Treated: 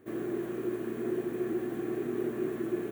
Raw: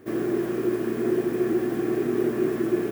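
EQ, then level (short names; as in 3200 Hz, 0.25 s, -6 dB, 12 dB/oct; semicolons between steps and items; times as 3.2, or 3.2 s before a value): bell 5100 Hz -12.5 dB 0.22 oct; -8.5 dB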